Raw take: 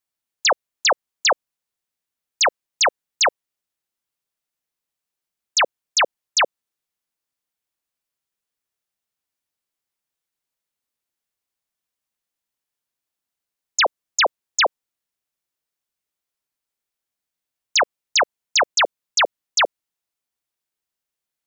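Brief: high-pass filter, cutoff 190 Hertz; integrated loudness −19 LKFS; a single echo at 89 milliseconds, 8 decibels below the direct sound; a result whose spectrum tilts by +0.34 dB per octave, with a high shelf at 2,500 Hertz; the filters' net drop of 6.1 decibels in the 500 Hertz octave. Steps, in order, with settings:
high-pass filter 190 Hz
parametric band 500 Hz −7.5 dB
high-shelf EQ 2,500 Hz −4 dB
single-tap delay 89 ms −8 dB
level +3.5 dB

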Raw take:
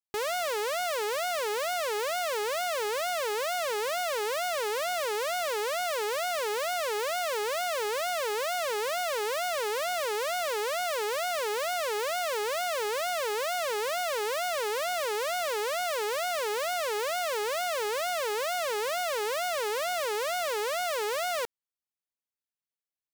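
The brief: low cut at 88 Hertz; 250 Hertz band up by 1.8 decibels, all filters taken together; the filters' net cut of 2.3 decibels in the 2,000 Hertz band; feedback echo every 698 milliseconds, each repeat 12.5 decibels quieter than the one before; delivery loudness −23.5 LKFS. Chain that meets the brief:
high-pass filter 88 Hz
parametric band 250 Hz +4.5 dB
parametric band 2,000 Hz −3 dB
repeating echo 698 ms, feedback 24%, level −12.5 dB
level +6.5 dB

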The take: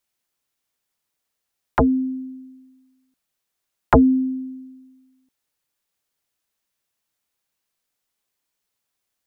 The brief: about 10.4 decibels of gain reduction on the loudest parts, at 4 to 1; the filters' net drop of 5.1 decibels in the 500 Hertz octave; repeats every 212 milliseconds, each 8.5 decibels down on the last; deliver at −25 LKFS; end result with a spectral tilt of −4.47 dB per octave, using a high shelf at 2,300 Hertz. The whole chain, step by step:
parametric band 500 Hz −6 dB
high-shelf EQ 2,300 Hz −6 dB
downward compressor 4 to 1, threshold −24 dBFS
repeating echo 212 ms, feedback 38%, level −8.5 dB
level +3.5 dB

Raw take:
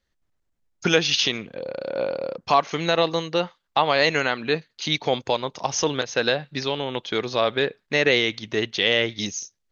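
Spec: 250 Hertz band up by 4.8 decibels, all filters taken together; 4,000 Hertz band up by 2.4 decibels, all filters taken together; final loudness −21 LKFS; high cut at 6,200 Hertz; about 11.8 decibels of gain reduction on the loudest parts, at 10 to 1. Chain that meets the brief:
low-pass filter 6,200 Hz
parametric band 250 Hz +6.5 dB
parametric band 4,000 Hz +3.5 dB
downward compressor 10 to 1, threshold −24 dBFS
level +8.5 dB

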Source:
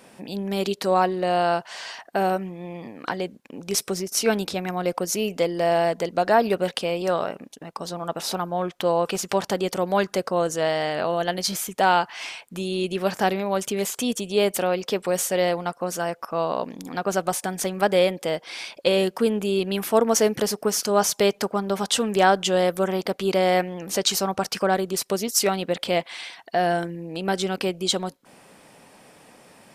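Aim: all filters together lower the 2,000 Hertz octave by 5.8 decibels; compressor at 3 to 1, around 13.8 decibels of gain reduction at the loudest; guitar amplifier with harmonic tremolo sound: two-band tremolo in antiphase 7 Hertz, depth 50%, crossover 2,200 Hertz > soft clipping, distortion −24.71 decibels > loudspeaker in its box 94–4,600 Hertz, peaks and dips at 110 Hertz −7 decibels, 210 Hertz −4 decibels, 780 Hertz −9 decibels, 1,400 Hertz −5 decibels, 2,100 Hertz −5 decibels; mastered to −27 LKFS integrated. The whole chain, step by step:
parametric band 2,000 Hz −3 dB
downward compressor 3 to 1, threshold −34 dBFS
two-band tremolo in antiphase 7 Hz, depth 50%, crossover 2,200 Hz
soft clipping −23 dBFS
loudspeaker in its box 94–4,600 Hz, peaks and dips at 110 Hz −7 dB, 210 Hz −4 dB, 780 Hz −9 dB, 1,400 Hz −5 dB, 2,100 Hz −5 dB
level +13 dB

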